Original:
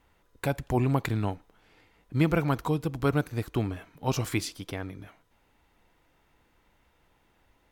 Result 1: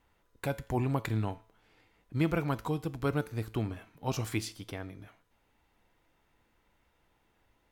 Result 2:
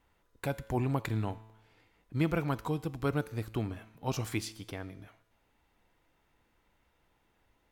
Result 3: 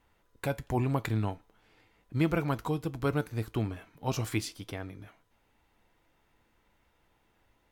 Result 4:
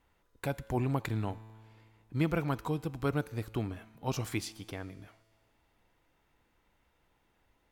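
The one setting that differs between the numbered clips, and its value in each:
resonator, decay: 0.42, 0.96, 0.16, 2.2 s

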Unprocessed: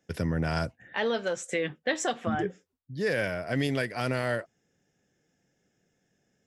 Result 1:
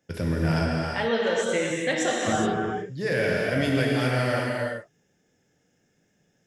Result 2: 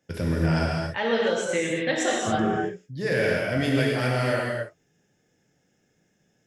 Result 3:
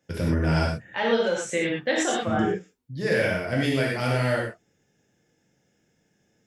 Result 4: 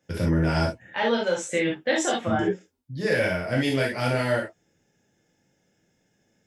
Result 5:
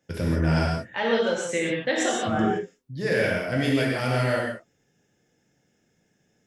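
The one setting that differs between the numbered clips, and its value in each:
non-linear reverb, gate: 440, 300, 140, 90, 200 ms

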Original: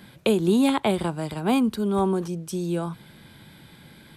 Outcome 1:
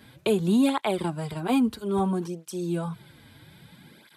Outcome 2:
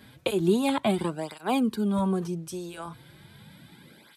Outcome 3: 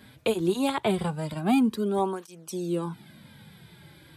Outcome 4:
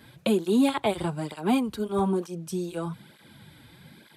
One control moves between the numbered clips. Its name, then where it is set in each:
tape flanging out of phase, nulls at: 0.61, 0.36, 0.22, 1.1 Hz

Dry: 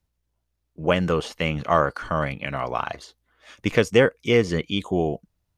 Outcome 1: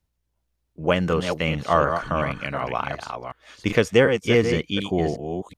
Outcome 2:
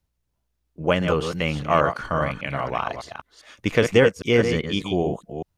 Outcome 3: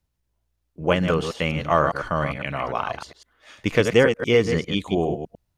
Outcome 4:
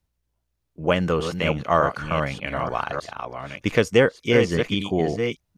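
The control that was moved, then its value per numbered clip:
reverse delay, time: 0.369, 0.201, 0.101, 0.6 s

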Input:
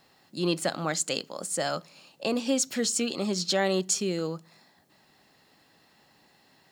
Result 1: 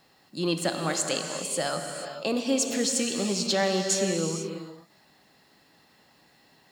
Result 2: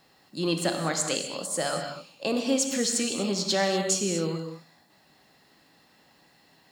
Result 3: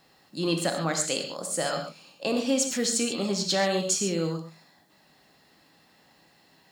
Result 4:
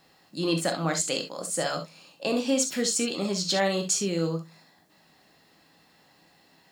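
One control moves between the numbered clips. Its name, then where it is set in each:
non-linear reverb, gate: 510, 270, 160, 90 ms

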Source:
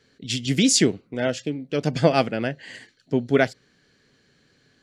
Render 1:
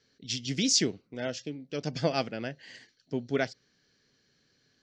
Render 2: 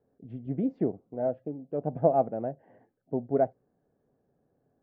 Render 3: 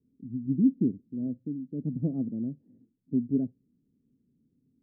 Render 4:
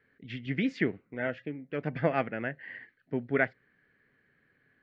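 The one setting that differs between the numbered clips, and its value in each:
ladder low-pass, frequency: 6400, 840, 290, 2200 Hz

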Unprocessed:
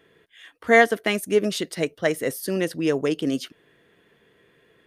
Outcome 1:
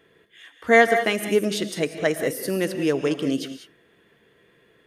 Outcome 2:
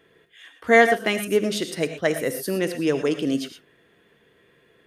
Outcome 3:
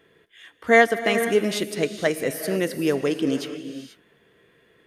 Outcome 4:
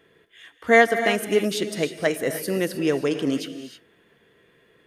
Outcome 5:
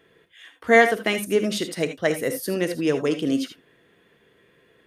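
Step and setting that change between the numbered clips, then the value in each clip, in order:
non-linear reverb, gate: 0.22, 0.14, 0.51, 0.34, 0.1 s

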